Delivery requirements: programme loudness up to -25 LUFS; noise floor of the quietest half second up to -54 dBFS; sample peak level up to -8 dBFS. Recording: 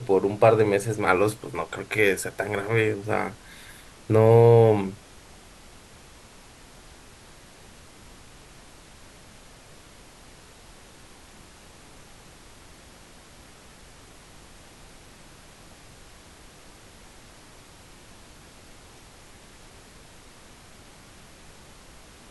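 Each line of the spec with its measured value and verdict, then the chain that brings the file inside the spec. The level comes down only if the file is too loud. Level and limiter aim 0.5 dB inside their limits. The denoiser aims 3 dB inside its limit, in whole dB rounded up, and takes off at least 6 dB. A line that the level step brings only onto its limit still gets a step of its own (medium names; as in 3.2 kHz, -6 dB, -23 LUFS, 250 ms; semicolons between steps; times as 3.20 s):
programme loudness -21.5 LUFS: fail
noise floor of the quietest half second -49 dBFS: fail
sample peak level -3.5 dBFS: fail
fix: noise reduction 6 dB, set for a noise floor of -49 dBFS; trim -4 dB; peak limiter -8.5 dBFS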